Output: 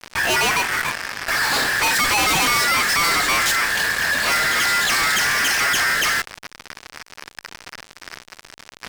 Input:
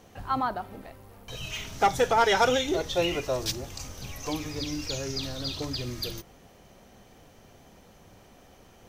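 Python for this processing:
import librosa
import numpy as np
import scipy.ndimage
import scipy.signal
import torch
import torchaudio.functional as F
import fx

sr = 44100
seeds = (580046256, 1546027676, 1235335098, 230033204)

y = x * np.sin(2.0 * np.pi * 1700.0 * np.arange(len(x)) / sr)
y = fx.env_lowpass(y, sr, base_hz=2500.0, full_db=-26.5)
y = fx.fuzz(y, sr, gain_db=53.0, gate_db=-50.0)
y = y * 10.0 ** (-3.5 / 20.0)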